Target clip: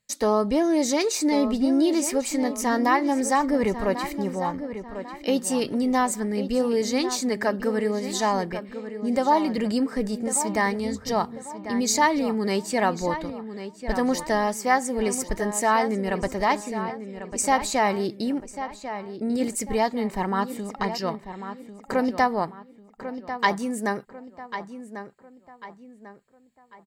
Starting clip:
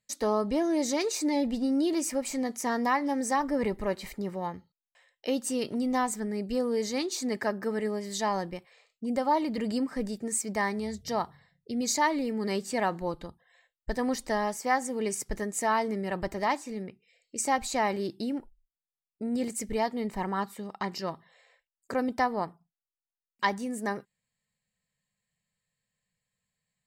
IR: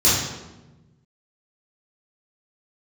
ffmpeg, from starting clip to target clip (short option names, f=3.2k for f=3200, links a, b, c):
-filter_complex "[0:a]asplit=2[a][b];[b]adelay=1095,lowpass=f=3.2k:p=1,volume=-10.5dB,asplit=2[c][d];[d]adelay=1095,lowpass=f=3.2k:p=1,volume=0.39,asplit=2[e][f];[f]adelay=1095,lowpass=f=3.2k:p=1,volume=0.39,asplit=2[g][h];[h]adelay=1095,lowpass=f=3.2k:p=1,volume=0.39[i];[a][c][e][g][i]amix=inputs=5:normalize=0,volume=5.5dB"